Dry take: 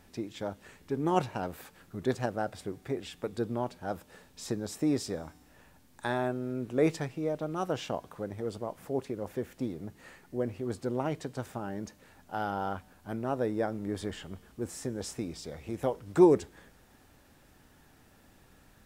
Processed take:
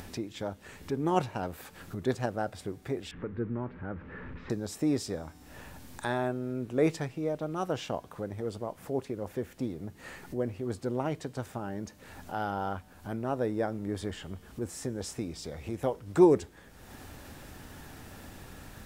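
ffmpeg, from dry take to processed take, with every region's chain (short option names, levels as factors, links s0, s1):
-filter_complex "[0:a]asettb=1/sr,asplit=3[s0][s1][s2];[s0]atrim=end=3.114[s3];[s1]atrim=start=3.11:end=4.5,asetpts=PTS-STARTPTS,afade=t=in:d=0.004:c=qsin,afade=t=out:st=1.386:d=0.004:c=qsin,aeval=exprs='val(0)+0.5*0.0075*sgn(val(0))':c=same,lowpass=f=1900:w=0.5412,lowpass=f=1900:w=1.3066,equalizer=f=710:w=1.6:g=-13[s4];[s2]atrim=start=4.496[s5];[s3][s4]acrossfade=d=0.004:c1=hsin:c2=qsin[s6];[s6][s5]acrossfade=d=0.004:c1=qsin:c2=hsin,acompressor=mode=upward:threshold=0.0178:ratio=2.5,equalizer=f=85:w=1.9:g=3.5"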